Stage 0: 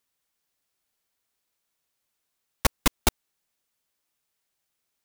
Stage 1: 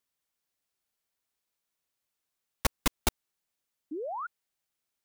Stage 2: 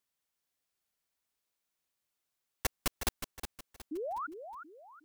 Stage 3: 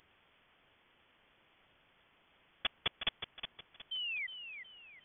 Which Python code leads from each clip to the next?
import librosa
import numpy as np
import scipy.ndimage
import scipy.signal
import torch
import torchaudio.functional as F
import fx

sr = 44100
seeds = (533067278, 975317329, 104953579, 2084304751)

y1 = fx.spec_paint(x, sr, seeds[0], shape='rise', start_s=3.91, length_s=0.36, low_hz=280.0, high_hz=1500.0, level_db=-30.0)
y1 = F.gain(torch.from_numpy(y1), -5.5).numpy()
y2 = 10.0 ** (-20.5 / 20.0) * (np.abs((y1 / 10.0 ** (-20.5 / 20.0) + 3.0) % 4.0 - 2.0) - 1.0)
y2 = fx.echo_feedback(y2, sr, ms=365, feedback_pct=35, wet_db=-9.0)
y2 = F.gain(torch.from_numpy(y2), -1.5).numpy()
y3 = fx.quant_dither(y2, sr, seeds[1], bits=10, dither='triangular')
y3 = fx.freq_invert(y3, sr, carrier_hz=3400)
y3 = F.gain(torch.from_numpy(y3), -1.5).numpy()